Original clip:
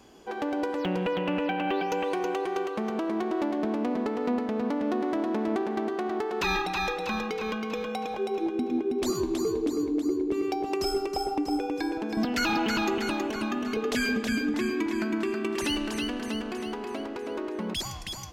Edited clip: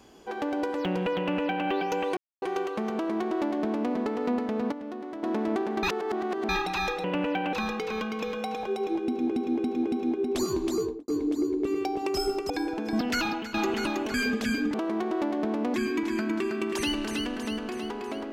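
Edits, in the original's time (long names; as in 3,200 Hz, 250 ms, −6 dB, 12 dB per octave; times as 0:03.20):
0:01.18–0:01.67: duplicate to 0:07.04
0:02.17–0:02.42: silence
0:02.94–0:03.94: duplicate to 0:14.57
0:04.72–0:05.23: clip gain −9.5 dB
0:05.83–0:06.49: reverse
0:08.54–0:08.82: repeat, 4 plays
0:09.45–0:09.75: fade out and dull
0:11.17–0:11.74: remove
0:12.37–0:12.78: fade out, to −16 dB
0:13.38–0:13.97: remove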